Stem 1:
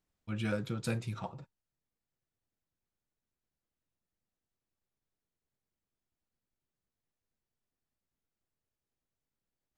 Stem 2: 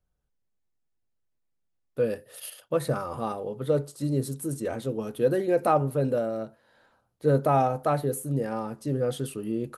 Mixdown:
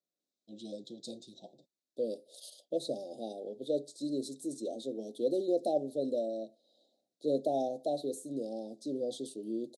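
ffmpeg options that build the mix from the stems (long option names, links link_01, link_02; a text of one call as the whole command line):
ffmpeg -i stem1.wav -i stem2.wav -filter_complex "[0:a]adelay=200,volume=-3dB[link_01];[1:a]volume=-3dB[link_02];[link_01][link_02]amix=inputs=2:normalize=0,asuperstop=centerf=1600:order=12:qfactor=0.54,highpass=frequency=260:width=0.5412,highpass=frequency=260:width=1.3066,equalizer=frequency=460:width_type=q:width=4:gain=-7,equalizer=frequency=1000:width_type=q:width=4:gain=-8,equalizer=frequency=2300:width_type=q:width=4:gain=5,equalizer=frequency=3800:width_type=q:width=4:gain=6,lowpass=frequency=8300:width=0.5412,lowpass=frequency=8300:width=1.3066" out.wav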